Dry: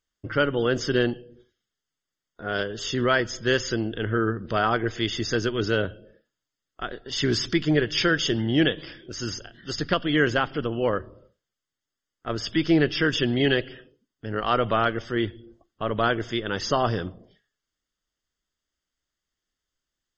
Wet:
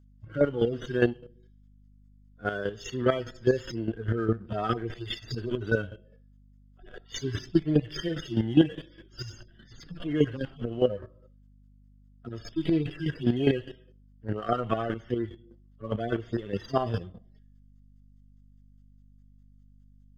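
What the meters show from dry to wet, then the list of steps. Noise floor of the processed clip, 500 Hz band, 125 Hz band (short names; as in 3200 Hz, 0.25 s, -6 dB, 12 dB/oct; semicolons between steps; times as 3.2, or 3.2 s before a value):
-57 dBFS, -3.5 dB, -2.0 dB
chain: median-filter separation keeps harmonic; chopper 4.9 Hz, depth 65%, duty 20%; in parallel at -5 dB: backlash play -43 dBFS; on the sum: hum 50 Hz, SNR 26 dB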